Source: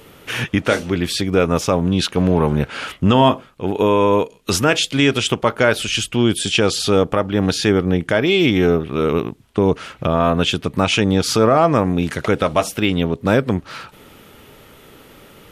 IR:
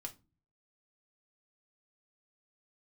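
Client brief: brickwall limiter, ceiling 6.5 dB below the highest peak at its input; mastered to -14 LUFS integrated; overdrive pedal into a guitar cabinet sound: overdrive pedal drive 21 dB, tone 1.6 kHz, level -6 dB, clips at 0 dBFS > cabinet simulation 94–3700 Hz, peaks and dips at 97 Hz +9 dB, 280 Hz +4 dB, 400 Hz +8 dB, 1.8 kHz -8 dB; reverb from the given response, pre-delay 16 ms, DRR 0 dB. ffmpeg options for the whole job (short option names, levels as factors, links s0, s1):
-filter_complex "[0:a]alimiter=limit=0.398:level=0:latency=1,asplit=2[s0][s1];[1:a]atrim=start_sample=2205,adelay=16[s2];[s1][s2]afir=irnorm=-1:irlink=0,volume=1.5[s3];[s0][s3]amix=inputs=2:normalize=0,asplit=2[s4][s5];[s5]highpass=f=720:p=1,volume=11.2,asoftclip=type=tanh:threshold=1[s6];[s4][s6]amix=inputs=2:normalize=0,lowpass=f=1600:p=1,volume=0.501,highpass=94,equalizer=f=97:t=q:w=4:g=9,equalizer=f=280:t=q:w=4:g=4,equalizer=f=400:t=q:w=4:g=8,equalizer=f=1800:t=q:w=4:g=-8,lowpass=f=3700:w=0.5412,lowpass=f=3700:w=1.3066,volume=0.596"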